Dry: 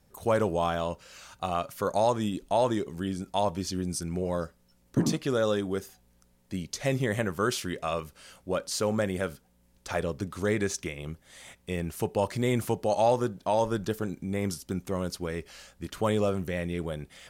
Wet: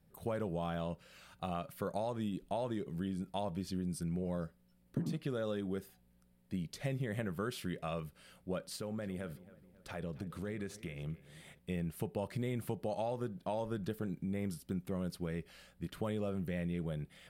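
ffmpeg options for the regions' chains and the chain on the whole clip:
-filter_complex "[0:a]asettb=1/sr,asplit=3[s0][s1][s2];[s0]atrim=end=8.764[s3];[s1]atrim=start=8.76:end=11.59,asetpts=PTS-STARTPTS,afade=t=in:d=0.004:c=qsin,afade=t=out:st=2.826:d=0.004:c=qsin,acompressor=threshold=0.02:ratio=2.5:attack=3.2:release=140:knee=1:detection=peak,asplit=2[s4][s5];[s5]adelay=271,lowpass=f=3400:p=1,volume=0.133,asplit=2[s6][s7];[s7]adelay=271,lowpass=f=3400:p=1,volume=0.49,asplit=2[s8][s9];[s9]adelay=271,lowpass=f=3400:p=1,volume=0.49,asplit=2[s10][s11];[s11]adelay=271,lowpass=f=3400:p=1,volume=0.49[s12];[s4][s6][s8][s10][s12]amix=inputs=5:normalize=0,atrim=end_sample=124803[s13];[s2]atrim=start=11.586[s14];[s3][s13]acrossfade=d=0.004:c1=hsin:c2=qsin[s15];[s15][s14]acrossfade=d=0.004:c1=qsin:c2=hsin,equalizer=f=160:t=o:w=0.67:g=8,equalizer=f=1000:t=o:w=0.67:g=-4,equalizer=f=6300:t=o:w=0.67:g=-11,acompressor=threshold=0.0501:ratio=6,volume=0.447"

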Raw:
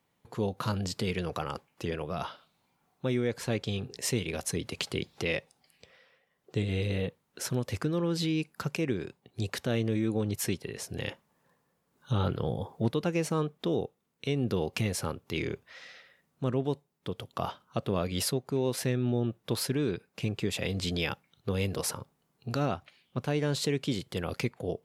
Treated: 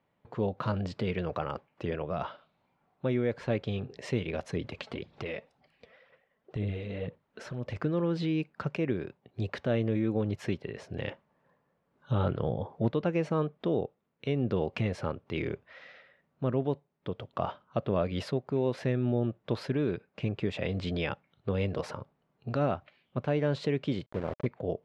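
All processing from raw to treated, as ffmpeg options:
-filter_complex "[0:a]asettb=1/sr,asplit=3[s0][s1][s2];[s0]atrim=end=4.644[s3];[s1]atrim=start=4.64:end=7.76,asetpts=PTS-STARTPTS,afade=t=in:d=0.004:c=qsin,afade=t=out:st=3.116:d=0.004:c=qsin,acompressor=threshold=0.0251:ratio=6:attack=3.2:release=140:knee=1:detection=peak,aphaser=in_gain=1:out_gain=1:delay=4.6:decay=0.48:speed=2:type=sinusoidal[s4];[s2]atrim=start=7.756[s5];[s3][s4]acrossfade=d=0.004:c1=hsin:c2=qsin[s6];[s6][s5]acrossfade=d=0.004:c1=qsin:c2=hsin,asettb=1/sr,asplit=3[s7][s8][s9];[s7]atrim=end=24.064[s10];[s8]atrim=start=24.06:end=24.46,asetpts=PTS-STARTPTS,afade=t=in:d=0.004:c=qsin,afade=t=out:st=0.396:d=0.004:c=qsin,lowpass=f=1100:w=0.5412,lowpass=f=1100:w=1.3066,aeval=exprs='val(0)*gte(abs(val(0)),0.0168)':c=same[s11];[s9]atrim=start=24.456[s12];[s10][s11]acrossfade=d=0.004:c1=hsin:c2=qsin[s13];[s13][s12]acrossfade=d=0.004:c1=qsin:c2=hsin,lowpass=2500,equalizer=f=600:t=o:w=0.25:g=6"

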